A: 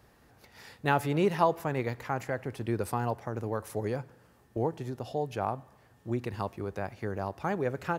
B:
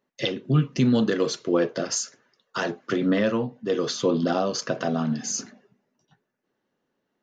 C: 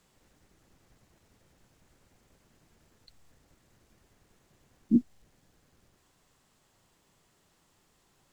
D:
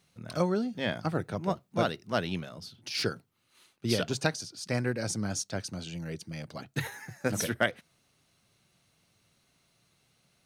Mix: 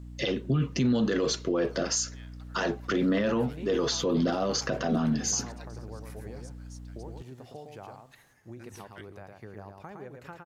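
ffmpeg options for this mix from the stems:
ffmpeg -i stem1.wav -i stem2.wav -i stem3.wav -i stem4.wav -filter_complex "[0:a]acompressor=threshold=-33dB:ratio=4,adelay=2400,volume=-8dB,asplit=2[link_01][link_02];[link_02]volume=-4.5dB[link_03];[1:a]aeval=exprs='val(0)+0.00708*(sin(2*PI*60*n/s)+sin(2*PI*2*60*n/s)/2+sin(2*PI*3*60*n/s)/3+sin(2*PI*4*60*n/s)/4+sin(2*PI*5*60*n/s)/5)':channel_layout=same,volume=1.5dB[link_04];[2:a]volume=-2dB[link_05];[3:a]highpass=1400,adelay=1350,volume=-19.5dB[link_06];[link_03]aecho=0:1:112:1[link_07];[link_01][link_04][link_05][link_06][link_07]amix=inputs=5:normalize=0,alimiter=limit=-18.5dB:level=0:latency=1:release=27" out.wav

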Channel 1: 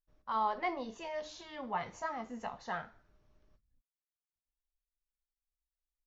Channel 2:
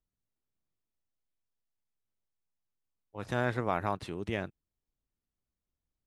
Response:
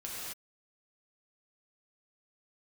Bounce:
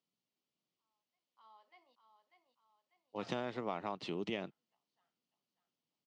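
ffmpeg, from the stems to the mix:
-filter_complex "[0:a]highpass=frequency=1200:poles=1,adelay=500,volume=-15.5dB,asplit=3[link_01][link_02][link_03];[link_01]atrim=end=1.36,asetpts=PTS-STARTPTS,afade=type=out:start_time=1.356:duration=0.004:curve=hsin[link_04];[link_02]atrim=start=1.36:end=2.66,asetpts=PTS-STARTPTS,volume=0[link_05];[link_03]atrim=start=2.66,asetpts=PTS-STARTPTS,afade=type=in:duration=0.004:curve=hsin[link_06];[link_04][link_05][link_06]concat=n=3:v=0:a=1,asplit=2[link_07][link_08];[link_08]volume=-10dB[link_09];[1:a]acompressor=threshold=-35dB:ratio=10,volume=2.5dB,asplit=2[link_10][link_11];[link_11]apad=whole_len=289374[link_12];[link_07][link_12]sidechaingate=range=-39dB:threshold=-46dB:ratio=16:detection=peak[link_13];[link_09]aecho=0:1:594|1188|1782|2376|2970|3564:1|0.43|0.185|0.0795|0.0342|0.0147[link_14];[link_13][link_10][link_14]amix=inputs=3:normalize=0,highpass=frequency=160:width=0.5412,highpass=frequency=160:width=1.3066,equalizer=frequency=1600:width_type=q:width=4:gain=-9,equalizer=frequency=3000:width_type=q:width=4:gain=6,equalizer=frequency=4600:width_type=q:width=4:gain=4,lowpass=frequency=6300:width=0.5412,lowpass=frequency=6300:width=1.3066"

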